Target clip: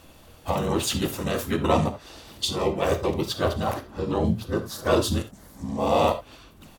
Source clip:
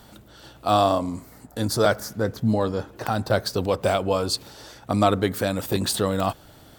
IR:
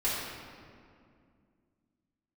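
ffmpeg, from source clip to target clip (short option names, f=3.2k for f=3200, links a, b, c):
-filter_complex "[0:a]areverse,asplit=3[a][b][c];[b]asetrate=33038,aresample=44100,atempo=1.33484,volume=-2dB[d];[c]asetrate=35002,aresample=44100,atempo=1.25992,volume=-1dB[e];[a][d][e]amix=inputs=3:normalize=0,asplit=2[f][g];[1:a]atrim=start_sample=2205,atrim=end_sample=3969[h];[g][h]afir=irnorm=-1:irlink=0,volume=-10.5dB[i];[f][i]amix=inputs=2:normalize=0,volume=-7.5dB"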